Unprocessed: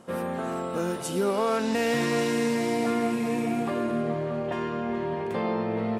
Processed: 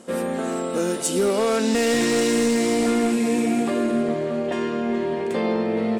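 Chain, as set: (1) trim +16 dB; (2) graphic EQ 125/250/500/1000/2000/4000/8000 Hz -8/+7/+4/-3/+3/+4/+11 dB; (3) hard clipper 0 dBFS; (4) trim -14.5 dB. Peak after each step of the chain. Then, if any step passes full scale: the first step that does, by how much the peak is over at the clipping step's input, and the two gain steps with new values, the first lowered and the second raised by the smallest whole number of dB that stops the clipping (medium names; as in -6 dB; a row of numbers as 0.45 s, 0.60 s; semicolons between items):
+2.5 dBFS, +7.0 dBFS, 0.0 dBFS, -14.5 dBFS; step 1, 7.0 dB; step 1 +9 dB, step 4 -7.5 dB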